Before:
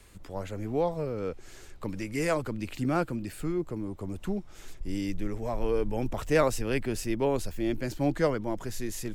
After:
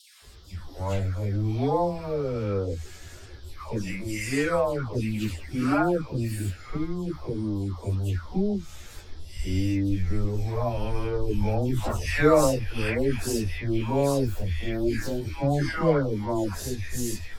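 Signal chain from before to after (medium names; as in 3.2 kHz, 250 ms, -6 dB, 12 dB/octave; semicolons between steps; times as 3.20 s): peaking EQ 80 Hz +14 dB 0.69 oct; phase dispersion lows, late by 131 ms, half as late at 1.3 kHz; band noise 3.1–5.6 kHz -63 dBFS; plain phase-vocoder stretch 1.9×; trim +6 dB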